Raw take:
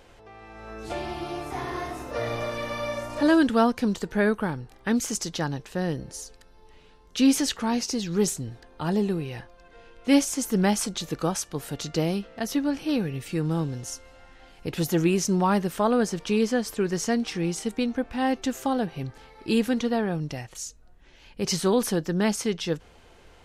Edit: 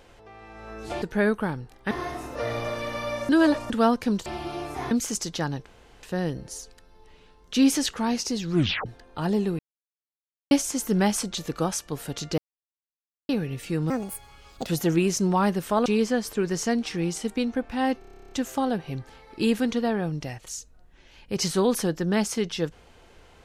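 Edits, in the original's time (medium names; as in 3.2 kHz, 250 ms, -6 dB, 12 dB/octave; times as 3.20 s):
1.02–1.67 s: swap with 4.02–4.91 s
3.05–3.46 s: reverse
5.66 s: insert room tone 0.37 s
8.14 s: tape stop 0.35 s
9.22–10.14 s: mute
12.01–12.92 s: mute
13.53–14.75 s: speed 159%
15.94–16.27 s: delete
18.40 s: stutter 0.03 s, 12 plays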